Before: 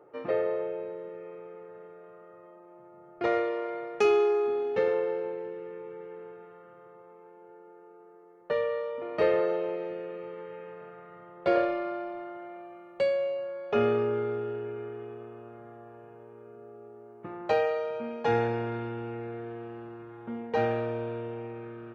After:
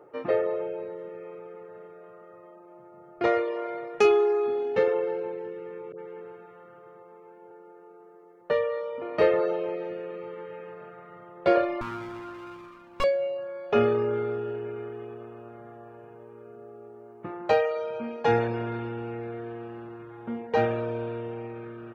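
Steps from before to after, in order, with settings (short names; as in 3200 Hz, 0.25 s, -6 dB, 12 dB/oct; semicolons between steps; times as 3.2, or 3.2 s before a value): 11.81–13.04 minimum comb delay 0.76 ms; reverb removal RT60 0.54 s; 5.92–7.51 dispersion highs, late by 73 ms, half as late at 1000 Hz; gain +4 dB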